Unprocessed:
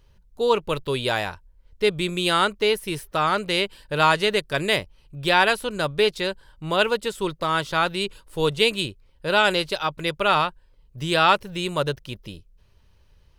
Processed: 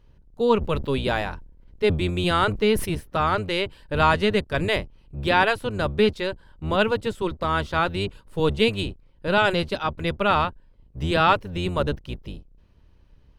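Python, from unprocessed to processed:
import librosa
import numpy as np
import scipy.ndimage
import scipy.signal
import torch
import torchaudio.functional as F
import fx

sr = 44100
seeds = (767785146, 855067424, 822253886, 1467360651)

y = fx.octave_divider(x, sr, octaves=1, level_db=1.0)
y = fx.high_shelf(y, sr, hz=3900.0, db=-11.0)
y = fx.sustainer(y, sr, db_per_s=88.0, at=(0.6, 2.87), fade=0.02)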